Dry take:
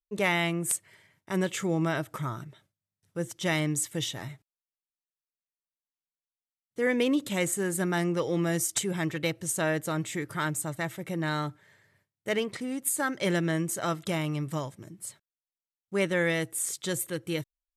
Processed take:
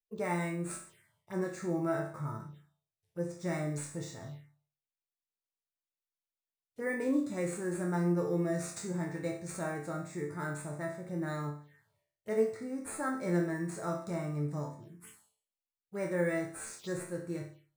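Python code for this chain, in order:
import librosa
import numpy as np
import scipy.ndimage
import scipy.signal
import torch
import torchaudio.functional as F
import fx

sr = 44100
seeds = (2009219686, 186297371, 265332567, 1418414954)

p1 = fx.sample_hold(x, sr, seeds[0], rate_hz=11000.0, jitter_pct=0)
p2 = x + F.gain(torch.from_numpy(p1), -4.0).numpy()
p3 = fx.resonator_bank(p2, sr, root=38, chord='minor', decay_s=0.48)
p4 = fx.env_phaser(p3, sr, low_hz=200.0, high_hz=3100.0, full_db=-43.0)
y = fx.hpss(p4, sr, part='harmonic', gain_db=6)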